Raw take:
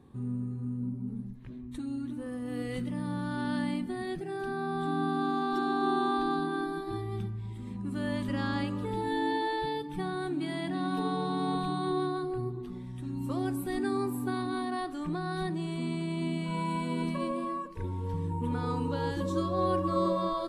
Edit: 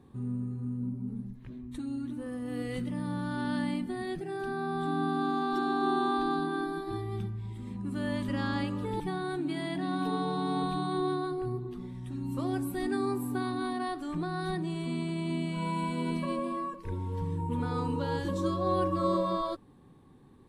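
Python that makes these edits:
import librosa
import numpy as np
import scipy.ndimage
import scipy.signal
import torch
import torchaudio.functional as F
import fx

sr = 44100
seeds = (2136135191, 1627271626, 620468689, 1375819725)

y = fx.edit(x, sr, fx.cut(start_s=9.0, length_s=0.92), tone=tone)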